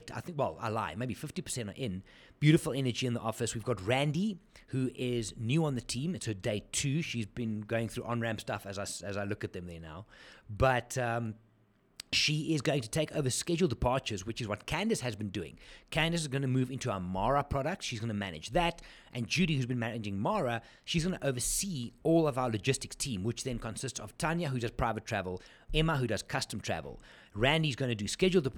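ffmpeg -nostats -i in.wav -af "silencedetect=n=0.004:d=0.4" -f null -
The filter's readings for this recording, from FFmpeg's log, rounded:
silence_start: 11.36
silence_end: 12.00 | silence_duration: 0.63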